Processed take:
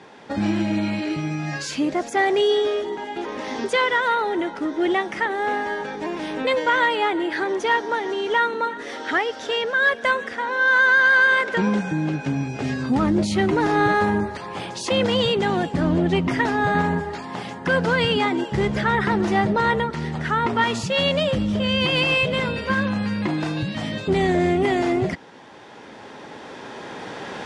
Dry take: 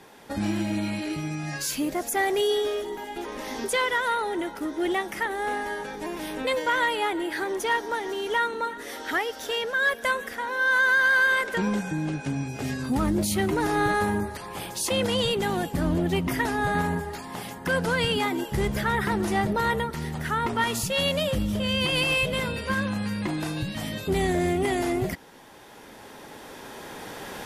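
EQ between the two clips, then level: high-pass 100 Hz 12 dB/octave; low-pass 10 kHz 24 dB/octave; distance through air 100 m; +5.5 dB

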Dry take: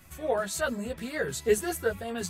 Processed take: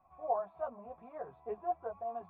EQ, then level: cascade formant filter a; +6.0 dB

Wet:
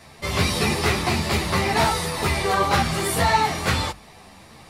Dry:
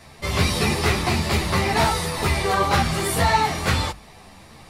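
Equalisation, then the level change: bass shelf 64 Hz -7 dB; 0.0 dB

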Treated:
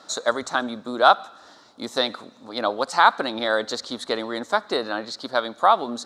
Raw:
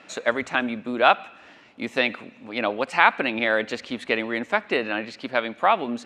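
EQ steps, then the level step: FFT filter 200 Hz 0 dB, 1.3 kHz +8 dB, 2.6 kHz -14 dB, 3.8 kHz +13 dB; -3.5 dB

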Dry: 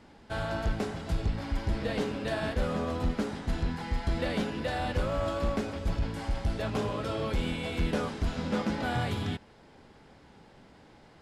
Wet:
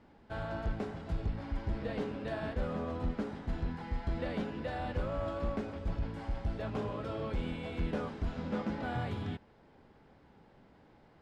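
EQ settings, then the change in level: low-pass 1.9 kHz 6 dB/octave; -5.0 dB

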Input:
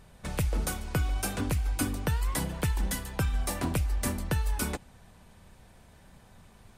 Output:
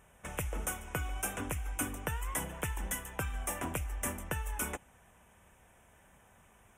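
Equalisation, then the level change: high-pass 52 Hz; Butterworth band-stop 4.4 kHz, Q 1.5; peaking EQ 140 Hz -9.5 dB 2.8 oct; -1.5 dB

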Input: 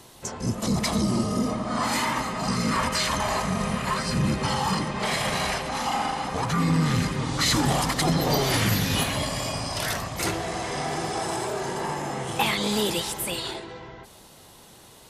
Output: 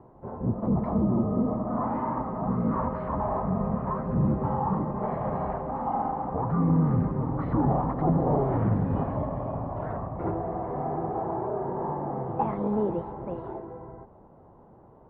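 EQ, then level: low-pass 1 kHz 24 dB/octave; 0.0 dB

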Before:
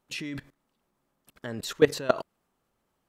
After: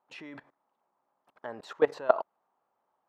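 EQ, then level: band-pass filter 850 Hz, Q 2.3; +6.0 dB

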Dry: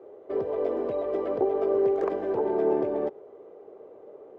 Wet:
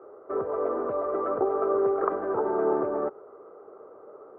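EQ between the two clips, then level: resonant low-pass 1.3 kHz, resonance Q 9.6; -2.0 dB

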